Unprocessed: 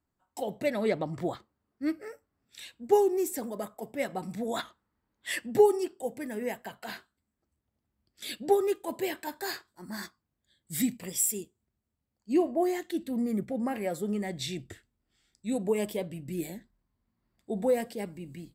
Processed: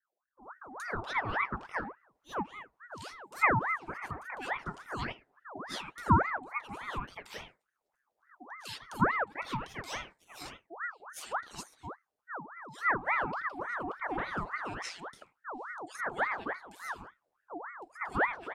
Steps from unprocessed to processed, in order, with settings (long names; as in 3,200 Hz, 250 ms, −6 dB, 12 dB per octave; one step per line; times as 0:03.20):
three-band delay without the direct sound lows, highs, mids 430/510 ms, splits 230/1,600 Hz
treble cut that deepens with the level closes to 1,600 Hz, closed at −26 dBFS
ring modulator whose carrier an LFO sweeps 1,100 Hz, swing 55%, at 3.5 Hz